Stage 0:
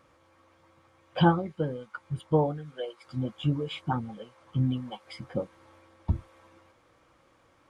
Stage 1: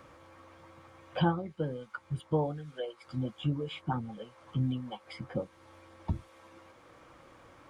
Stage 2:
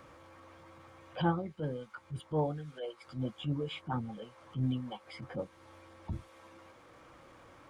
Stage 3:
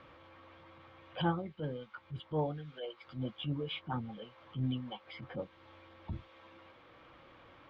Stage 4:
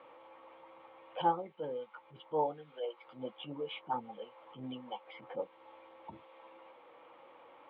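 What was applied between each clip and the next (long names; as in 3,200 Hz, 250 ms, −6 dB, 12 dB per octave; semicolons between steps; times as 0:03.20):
multiband upward and downward compressor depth 40%; level −3 dB
transient designer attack −8 dB, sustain 0 dB
transistor ladder low-pass 4,100 Hz, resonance 40%; level +6 dB
loudspeaker in its box 320–3,200 Hz, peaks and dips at 500 Hz +7 dB, 870 Hz +10 dB, 1,600 Hz −6 dB; level −1.5 dB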